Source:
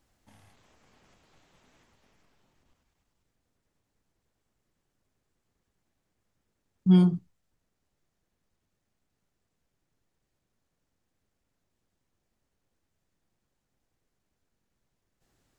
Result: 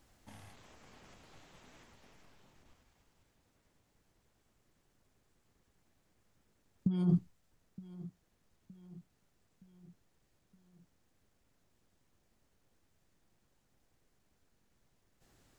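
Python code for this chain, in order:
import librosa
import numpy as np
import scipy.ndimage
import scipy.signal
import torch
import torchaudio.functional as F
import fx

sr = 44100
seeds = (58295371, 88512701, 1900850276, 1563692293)

p1 = fx.over_compress(x, sr, threshold_db=-27.0, ratio=-1.0)
p2 = p1 + fx.echo_feedback(p1, sr, ms=918, feedback_pct=49, wet_db=-18, dry=0)
y = p2 * 10.0 ** (-2.5 / 20.0)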